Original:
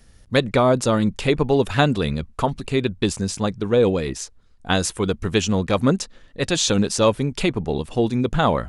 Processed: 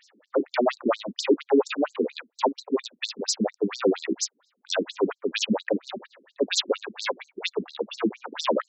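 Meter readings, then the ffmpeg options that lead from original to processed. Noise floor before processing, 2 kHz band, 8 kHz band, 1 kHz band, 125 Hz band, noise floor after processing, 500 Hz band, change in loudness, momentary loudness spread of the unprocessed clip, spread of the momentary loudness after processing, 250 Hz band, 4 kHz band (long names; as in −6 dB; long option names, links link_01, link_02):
−51 dBFS, −6.5 dB, −6.0 dB, −6.5 dB, −22.0 dB, −78 dBFS, −5.0 dB, −6.0 dB, 8 LU, 7 LU, −7.0 dB, −3.5 dB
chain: -af "asoftclip=type=tanh:threshold=-20dB,afftfilt=real='re*between(b*sr/1024,280*pow(5800/280,0.5+0.5*sin(2*PI*4.3*pts/sr))/1.41,280*pow(5800/280,0.5+0.5*sin(2*PI*4.3*pts/sr))*1.41)':imag='im*between(b*sr/1024,280*pow(5800/280,0.5+0.5*sin(2*PI*4.3*pts/sr))/1.41,280*pow(5800/280,0.5+0.5*sin(2*PI*4.3*pts/sr))*1.41)':win_size=1024:overlap=0.75,volume=8dB"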